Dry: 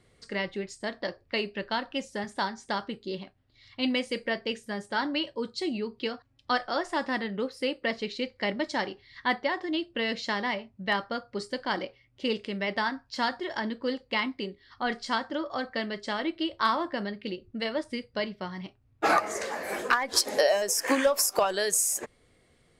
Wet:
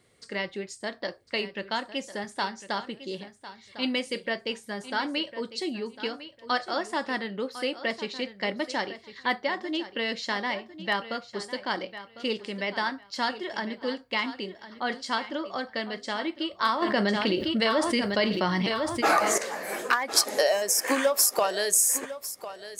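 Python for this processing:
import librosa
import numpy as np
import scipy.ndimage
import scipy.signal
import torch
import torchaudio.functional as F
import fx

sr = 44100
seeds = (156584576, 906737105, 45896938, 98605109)

y = fx.highpass(x, sr, hz=170.0, slope=6)
y = fx.high_shelf(y, sr, hz=8100.0, db=7.5)
y = fx.echo_feedback(y, sr, ms=1052, feedback_pct=19, wet_db=-14)
y = fx.env_flatten(y, sr, amount_pct=70, at=(16.82, 19.38))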